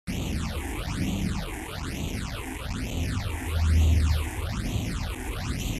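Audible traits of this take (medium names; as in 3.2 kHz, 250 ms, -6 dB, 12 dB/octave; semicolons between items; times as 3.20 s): a quantiser's noise floor 6-bit, dither none; phasing stages 8, 1.1 Hz, lowest notch 160–1600 Hz; MP2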